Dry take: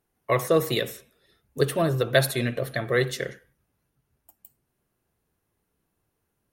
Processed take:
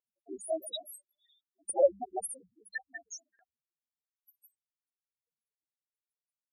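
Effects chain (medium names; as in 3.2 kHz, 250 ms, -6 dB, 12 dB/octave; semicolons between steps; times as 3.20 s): cycle switcher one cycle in 2, inverted; peaking EQ 8.7 kHz +10.5 dB 1.7 oct; loudest bins only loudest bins 2; LFO high-pass saw up 0.59 Hz 480–4100 Hz; trim +1.5 dB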